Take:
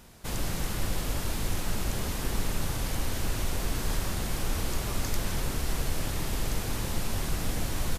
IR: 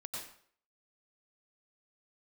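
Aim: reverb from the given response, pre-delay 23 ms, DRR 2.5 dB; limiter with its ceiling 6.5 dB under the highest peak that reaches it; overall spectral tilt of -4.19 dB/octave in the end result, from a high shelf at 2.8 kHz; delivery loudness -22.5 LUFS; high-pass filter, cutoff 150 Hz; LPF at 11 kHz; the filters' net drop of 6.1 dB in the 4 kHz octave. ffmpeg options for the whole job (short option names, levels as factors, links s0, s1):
-filter_complex "[0:a]highpass=150,lowpass=11000,highshelf=f=2800:g=-3.5,equalizer=f=4000:t=o:g=-5,alimiter=level_in=1.88:limit=0.0631:level=0:latency=1,volume=0.531,asplit=2[s0][s1];[1:a]atrim=start_sample=2205,adelay=23[s2];[s1][s2]afir=irnorm=-1:irlink=0,volume=0.841[s3];[s0][s3]amix=inputs=2:normalize=0,volume=5.31"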